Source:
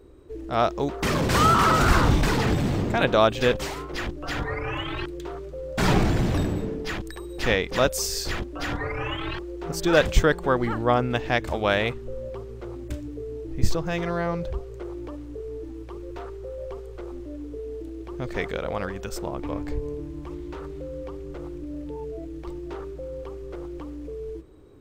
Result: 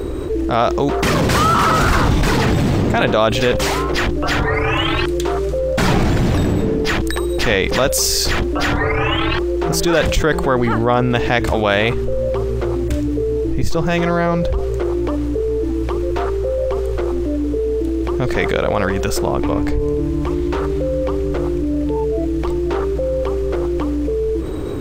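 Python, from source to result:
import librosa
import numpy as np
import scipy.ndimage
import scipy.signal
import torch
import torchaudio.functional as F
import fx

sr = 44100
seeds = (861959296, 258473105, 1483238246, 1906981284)

y = fx.peak_eq(x, sr, hz=9000.0, db=5.5, octaves=1.9, at=(4.54, 5.59))
y = fx.env_flatten(y, sr, amount_pct=70)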